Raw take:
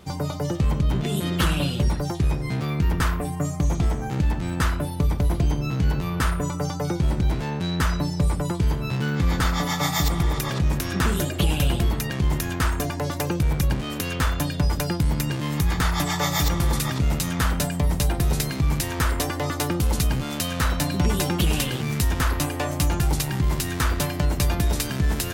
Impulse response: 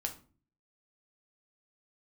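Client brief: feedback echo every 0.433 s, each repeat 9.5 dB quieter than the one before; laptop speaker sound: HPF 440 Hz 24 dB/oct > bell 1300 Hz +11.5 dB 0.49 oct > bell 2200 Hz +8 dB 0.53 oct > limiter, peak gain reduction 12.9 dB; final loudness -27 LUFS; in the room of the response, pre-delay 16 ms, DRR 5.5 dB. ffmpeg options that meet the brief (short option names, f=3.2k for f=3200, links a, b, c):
-filter_complex "[0:a]aecho=1:1:433|866|1299|1732:0.335|0.111|0.0365|0.012,asplit=2[a][b];[1:a]atrim=start_sample=2205,adelay=16[c];[b][c]afir=irnorm=-1:irlink=0,volume=-6dB[d];[a][d]amix=inputs=2:normalize=0,highpass=f=440:w=0.5412,highpass=f=440:w=1.3066,equalizer=f=1.3k:t=o:w=0.49:g=11.5,equalizer=f=2.2k:t=o:w=0.53:g=8,volume=0.5dB,alimiter=limit=-17.5dB:level=0:latency=1"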